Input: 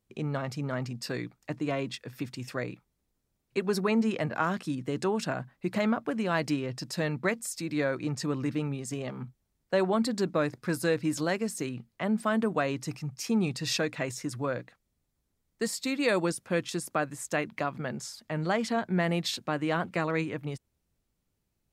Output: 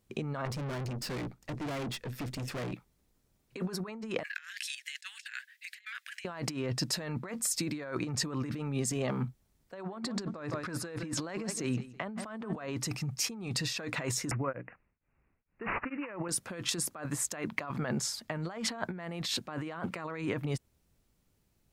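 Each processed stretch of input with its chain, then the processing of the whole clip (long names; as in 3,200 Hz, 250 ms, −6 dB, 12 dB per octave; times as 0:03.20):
0:00.45–0:02.73: low-shelf EQ 490 Hz +7 dB + tube saturation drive 41 dB, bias 0.65
0:04.23–0:06.25: Chebyshev high-pass filter 1,700 Hz, order 5 + compressor whose output falls as the input rises −49 dBFS, ratio −0.5
0:09.74–0:12.73: high-frequency loss of the air 52 metres + repeating echo 164 ms, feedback 24%, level −19.5 dB
0:14.31–0:16.29: bad sample-rate conversion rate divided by 8×, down none, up filtered + tremolo along a rectified sine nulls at 2.2 Hz
whole clip: dynamic equaliser 1,100 Hz, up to +6 dB, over −43 dBFS, Q 1.1; compressor whose output falls as the input rises −36 dBFS, ratio −1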